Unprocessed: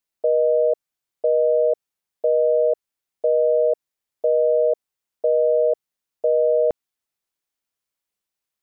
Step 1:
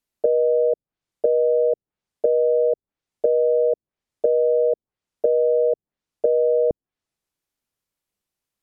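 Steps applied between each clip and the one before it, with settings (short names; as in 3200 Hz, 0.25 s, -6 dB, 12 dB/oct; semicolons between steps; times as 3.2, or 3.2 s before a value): treble ducked by the level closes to 470 Hz, closed at -20 dBFS; low shelf 430 Hz +9.5 dB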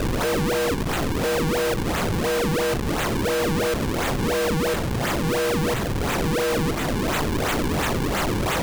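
infinite clipping; decimation with a swept rate 39×, swing 160% 2.9 Hz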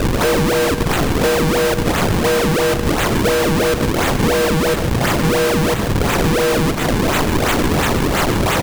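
transient shaper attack +11 dB, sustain -11 dB; echo 0.147 s -11 dB; gain +6.5 dB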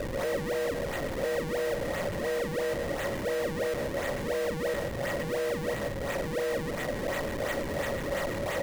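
soft clip -26 dBFS, distortion -10 dB; small resonant body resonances 560/1900 Hz, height 15 dB, ringing for 40 ms; gain -8.5 dB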